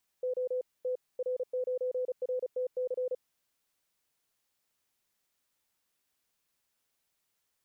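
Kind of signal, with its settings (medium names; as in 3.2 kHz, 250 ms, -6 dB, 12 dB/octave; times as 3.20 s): Morse "O T R9RTC" 35 wpm 505 Hz -29 dBFS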